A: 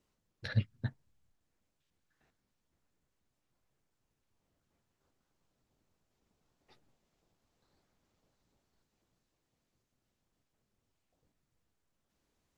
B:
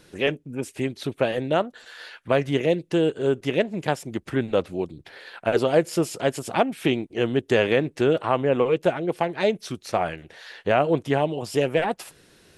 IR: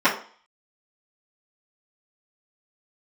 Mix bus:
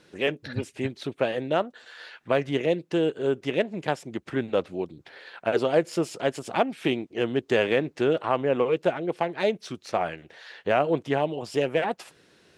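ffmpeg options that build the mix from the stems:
-filter_complex "[0:a]volume=1.19[s0];[1:a]adynamicsmooth=sensitivity=3:basefreq=7700,volume=0.794[s1];[s0][s1]amix=inputs=2:normalize=0,highpass=f=160:p=1"

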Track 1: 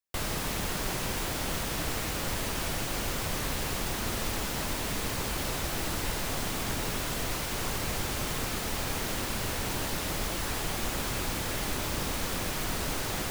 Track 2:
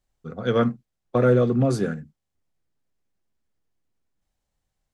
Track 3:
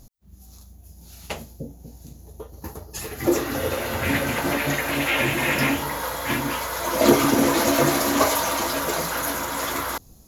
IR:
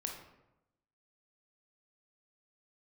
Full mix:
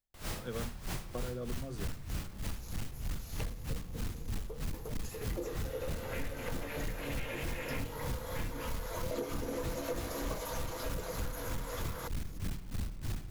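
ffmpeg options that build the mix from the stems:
-filter_complex "[0:a]asubboost=boost=7.5:cutoff=190,volume=9.44,asoftclip=hard,volume=0.106,aeval=exprs='val(0)*pow(10,-22*(0.5-0.5*cos(2*PI*3.2*n/s))/20)':c=same,volume=0.596,asplit=2[s0][s1];[s1]volume=0.562[s2];[1:a]volume=0.158[s3];[2:a]equalizer=f=480:t=o:w=0.24:g=13.5,acompressor=mode=upward:threshold=0.1:ratio=2.5,adelay=2100,volume=0.251[s4];[3:a]atrim=start_sample=2205[s5];[s2][s5]afir=irnorm=-1:irlink=0[s6];[s0][s3][s4][s6]amix=inputs=4:normalize=0,acompressor=threshold=0.02:ratio=6"

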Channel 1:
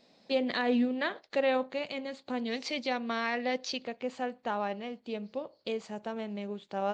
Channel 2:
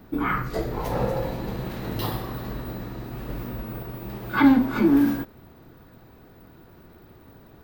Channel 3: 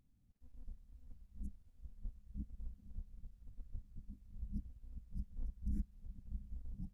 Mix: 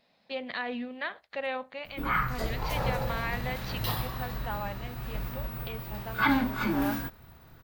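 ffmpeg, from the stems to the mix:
-filter_complex "[0:a]lowpass=3000,volume=1.12[s0];[1:a]adelay=1850,volume=1.06[s1];[2:a]highpass=f=79:w=0.5412,highpass=f=79:w=1.3066,tiltshelf=f=970:g=-8,volume=0.447[s2];[s0][s1][s2]amix=inputs=3:normalize=0,equalizer=f=330:t=o:w=1.8:g=-13"

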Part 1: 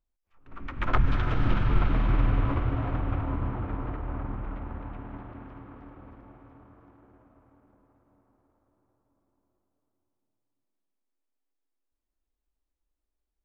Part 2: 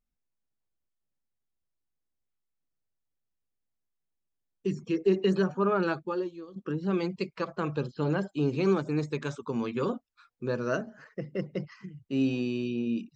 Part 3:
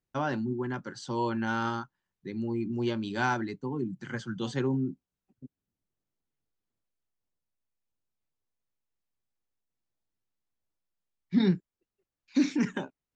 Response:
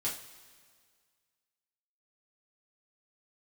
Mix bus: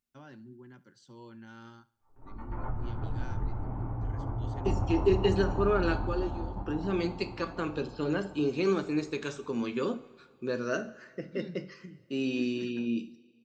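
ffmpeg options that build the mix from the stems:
-filter_complex "[0:a]acompressor=threshold=0.0398:ratio=2.5,lowpass=f=840:t=q:w=4.9,adelay=1700,volume=0.75,asplit=2[s0][s1];[s1]volume=0.562[s2];[1:a]highpass=f=250:p=1,volume=1,asplit=3[s3][s4][s5];[s4]volume=0.398[s6];[2:a]volume=0.141,asplit=2[s7][s8];[s8]volume=0.106[s9];[s5]apad=whole_len=672440[s10];[s0][s10]sidechaingate=range=0.0224:threshold=0.00501:ratio=16:detection=peak[s11];[3:a]atrim=start_sample=2205[s12];[s2][s6]amix=inputs=2:normalize=0[s13];[s13][s12]afir=irnorm=-1:irlink=0[s14];[s9]aecho=0:1:70|140|210|280|350|420:1|0.4|0.16|0.064|0.0256|0.0102[s15];[s11][s3][s7][s14][s15]amix=inputs=5:normalize=0,equalizer=f=850:t=o:w=1.4:g=-7"

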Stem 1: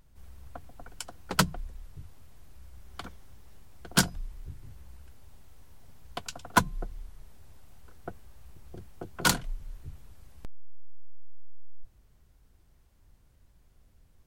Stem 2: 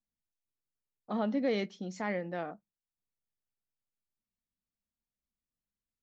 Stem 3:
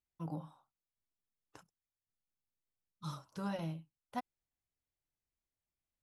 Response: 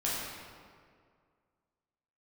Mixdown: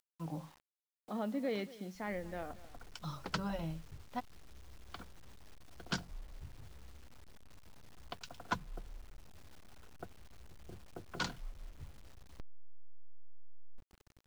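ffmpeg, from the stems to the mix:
-filter_complex "[0:a]acompressor=threshold=0.0112:ratio=1.5,adelay=1950,volume=0.501[s0];[1:a]acompressor=mode=upward:threshold=0.00631:ratio=2.5,volume=0.501,asplit=2[s1][s2];[s2]volume=0.119[s3];[2:a]volume=0.944[s4];[s3]aecho=0:1:233:1[s5];[s0][s1][s4][s5]amix=inputs=4:normalize=0,lowpass=f=5900:w=0.5412,lowpass=f=5900:w=1.3066,acrusher=bits=9:mix=0:aa=0.000001"

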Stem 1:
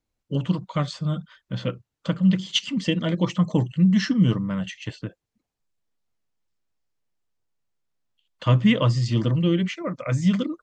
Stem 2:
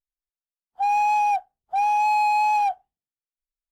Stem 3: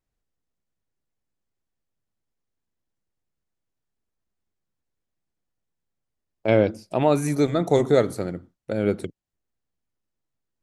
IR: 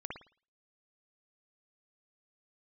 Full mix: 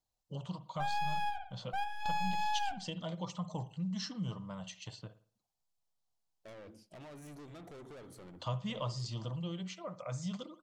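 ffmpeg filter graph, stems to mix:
-filter_complex "[0:a]firequalizer=gain_entry='entry(170,0);entry(260,-9);entry(760,11);entry(1800,-7);entry(4000,9)':delay=0.05:min_phase=1,volume=0.237,asplit=3[s0][s1][s2];[s1]volume=0.299[s3];[1:a]aeval=exprs='clip(val(0),-1,0.015)':c=same,volume=0.668,asplit=2[s4][s5];[s5]volume=0.398[s6];[2:a]acompressor=threshold=0.0891:ratio=6,equalizer=f=3100:t=o:w=0.21:g=9.5,asoftclip=type=tanh:threshold=0.0211,volume=0.178,asplit=2[s7][s8];[s8]volume=0.133[s9];[s2]apad=whole_len=163917[s10];[s4][s10]sidechaingate=range=0.2:threshold=0.00251:ratio=16:detection=peak[s11];[3:a]atrim=start_sample=2205[s12];[s3][s6][s9]amix=inputs=3:normalize=0[s13];[s13][s12]afir=irnorm=-1:irlink=0[s14];[s0][s11][s7][s14]amix=inputs=4:normalize=0,acompressor=threshold=0.00447:ratio=1.5"

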